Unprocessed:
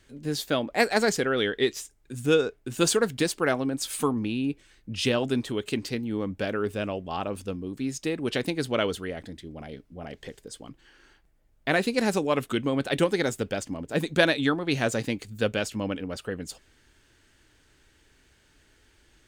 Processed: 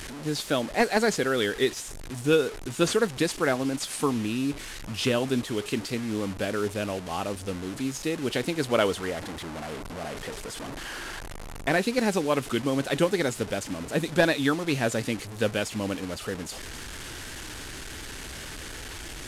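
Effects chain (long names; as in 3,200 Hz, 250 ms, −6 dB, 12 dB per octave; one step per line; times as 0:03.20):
linear delta modulator 64 kbit/s, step −32.5 dBFS
0:08.60–0:11.69: parametric band 920 Hz +4.5 dB 2.4 octaves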